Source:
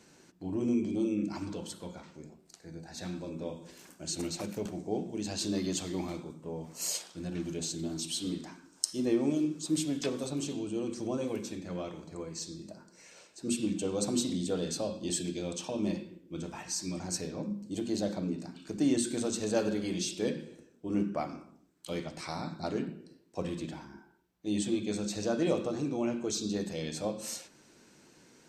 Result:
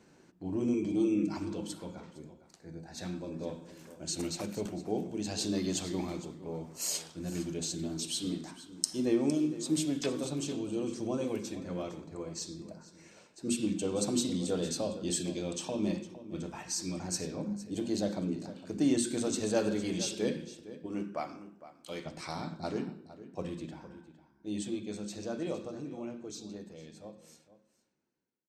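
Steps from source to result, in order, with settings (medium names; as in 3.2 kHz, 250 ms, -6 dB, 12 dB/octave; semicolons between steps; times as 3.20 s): fade out at the end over 6.84 s; 0.73–1.34 s: comb 6.4 ms, depth 61%; 20.86–22.06 s: bass shelf 340 Hz -10.5 dB; on a send: delay 459 ms -14.5 dB; on the sum: tape noise reduction on one side only decoder only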